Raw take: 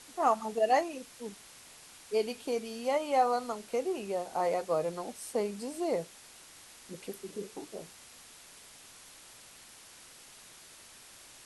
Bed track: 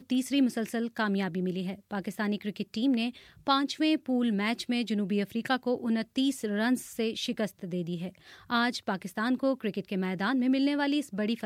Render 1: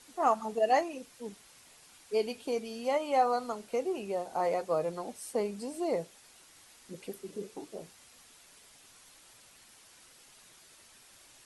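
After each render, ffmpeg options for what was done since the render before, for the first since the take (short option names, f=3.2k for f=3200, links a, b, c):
-af "afftdn=nr=6:nf=-54"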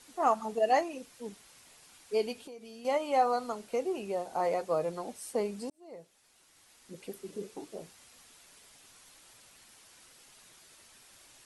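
-filter_complex "[0:a]asettb=1/sr,asplit=3[a][b][c];[a]atrim=end=2.334[d];[b]atrim=start=2.33:end=2.85,asetpts=PTS-STARTPTS,afade=t=in:d=0.004:c=qsin,afade=t=out:st=0.516:d=0.004:c=qsin,acompressor=threshold=-45dB:ratio=5:attack=3.2:release=140:knee=1:detection=peak[e];[c]atrim=start=2.846[f];[d][e]acrossfade=d=0.004:c1=hsin:c2=qsin[g];[g][f]acrossfade=d=0.004:c1=qsin:c2=hsin,asplit=2[h][i];[h]atrim=end=5.7,asetpts=PTS-STARTPTS,afade=t=out:st=5.696:d=0.004:c=hsin[j];[i]atrim=start=5.7,asetpts=PTS-STARTPTS,afade=t=in:d=1.56[k];[j][k]concat=n=2:v=0:a=1"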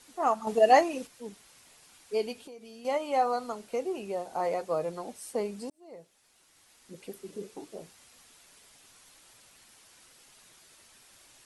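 -filter_complex "[0:a]asplit=3[a][b][c];[a]atrim=end=0.472[d];[b]atrim=start=0.468:end=1.072,asetpts=PTS-STARTPTS,volume=6.5dB[e];[c]atrim=start=1.068[f];[d][e]acrossfade=d=0.004:c1=hsin:c2=hsin[g];[g][f]acrossfade=d=0.004:c1=hsin:c2=hsin"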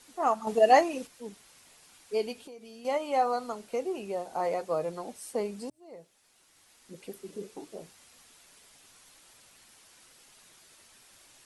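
-af "bandreject=f=60:t=h:w=6,bandreject=f=120:t=h:w=6"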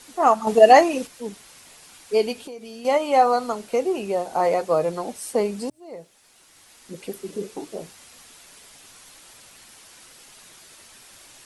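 -af "volume=9.5dB,alimiter=limit=-2dB:level=0:latency=1"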